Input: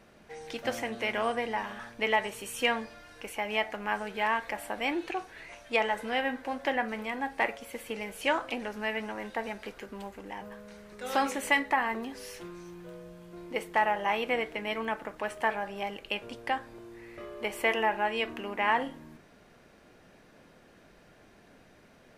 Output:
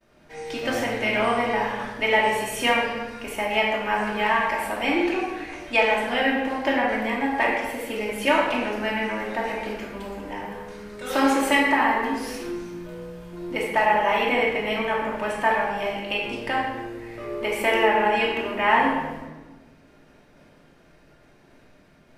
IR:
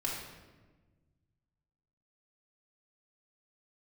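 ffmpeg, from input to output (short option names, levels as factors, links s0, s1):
-filter_complex "[0:a]agate=range=0.0224:threshold=0.00282:ratio=3:detection=peak[s0];[1:a]atrim=start_sample=2205[s1];[s0][s1]afir=irnorm=-1:irlink=0,volume=1.68"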